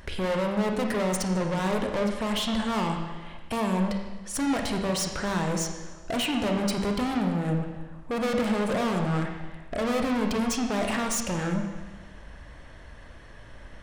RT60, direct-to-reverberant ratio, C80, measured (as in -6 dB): 1.3 s, 3.0 dB, 6.0 dB